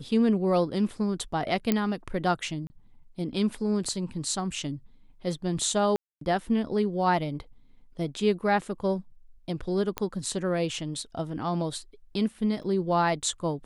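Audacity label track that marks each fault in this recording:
1.720000	1.720000	click −10 dBFS
2.670000	2.700000	drop-out 30 ms
5.960000	6.210000	drop-out 253 ms
9.980000	9.980000	click −13 dBFS
12.630000	12.630000	drop-out 4.8 ms

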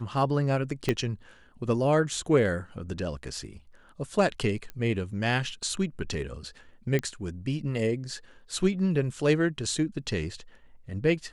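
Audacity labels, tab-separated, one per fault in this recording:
0.890000	0.890000	click −12 dBFS
4.700000	4.700000	click −24 dBFS
6.990000	6.990000	click −16 dBFS

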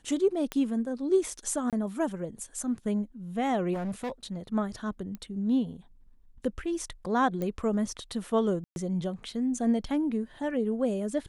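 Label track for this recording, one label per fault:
0.520000	0.520000	click −17 dBFS
1.700000	1.730000	drop-out 27 ms
3.730000	4.370000	clipping −29.5 dBFS
5.150000	5.150000	click −26 dBFS
7.420000	7.420000	click −21 dBFS
8.640000	8.760000	drop-out 121 ms

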